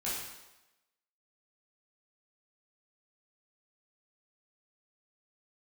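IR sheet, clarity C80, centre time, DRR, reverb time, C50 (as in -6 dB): 3.5 dB, 70 ms, -9.0 dB, 1.0 s, 0.5 dB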